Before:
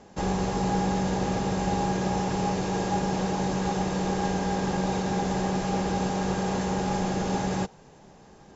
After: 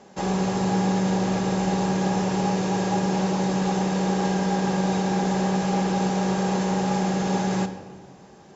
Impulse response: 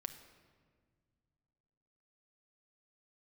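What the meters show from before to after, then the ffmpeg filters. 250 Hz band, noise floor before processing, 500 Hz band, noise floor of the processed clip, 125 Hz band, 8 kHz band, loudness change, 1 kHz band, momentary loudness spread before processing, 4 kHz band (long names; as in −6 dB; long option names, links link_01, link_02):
+4.5 dB, −52 dBFS, +3.0 dB, −48 dBFS, +3.5 dB, can't be measured, +3.5 dB, +2.0 dB, 1 LU, +3.0 dB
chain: -filter_complex "[0:a]highpass=frequency=210:poles=1[link_01];[1:a]atrim=start_sample=2205,asetrate=48510,aresample=44100[link_02];[link_01][link_02]afir=irnorm=-1:irlink=0,volume=6.5dB"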